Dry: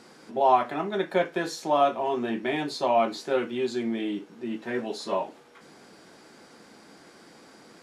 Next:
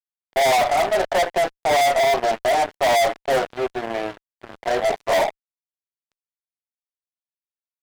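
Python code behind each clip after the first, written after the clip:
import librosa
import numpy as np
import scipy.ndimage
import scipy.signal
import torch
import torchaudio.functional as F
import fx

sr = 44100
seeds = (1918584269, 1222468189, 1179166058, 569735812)

y = fx.ladder_bandpass(x, sr, hz=720.0, resonance_pct=75)
y = fx.fuzz(y, sr, gain_db=43.0, gate_db=-50.0)
y = F.gain(torch.from_numpy(y), -2.5).numpy()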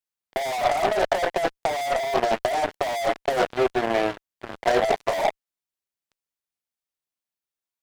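y = fx.over_compress(x, sr, threshold_db=-21.0, ratio=-0.5)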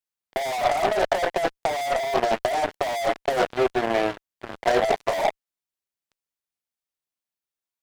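y = x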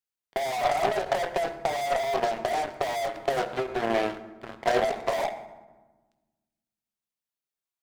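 y = fx.rev_fdn(x, sr, rt60_s=1.2, lf_ratio=1.55, hf_ratio=0.6, size_ms=43.0, drr_db=10.0)
y = fx.end_taper(y, sr, db_per_s=140.0)
y = F.gain(torch.from_numpy(y), -3.0).numpy()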